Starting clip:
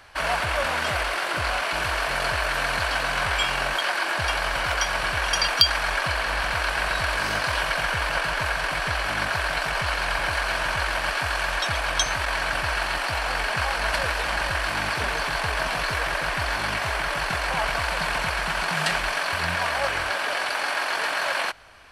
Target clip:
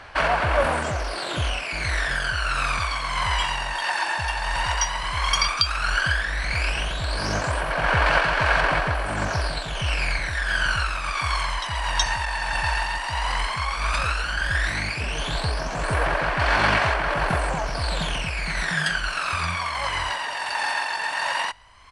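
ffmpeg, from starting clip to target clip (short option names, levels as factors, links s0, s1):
-af "aresample=22050,aresample=44100,tremolo=f=1.5:d=0.35,aphaser=in_gain=1:out_gain=1:delay=1.1:decay=0.69:speed=0.12:type=sinusoidal,volume=0.841"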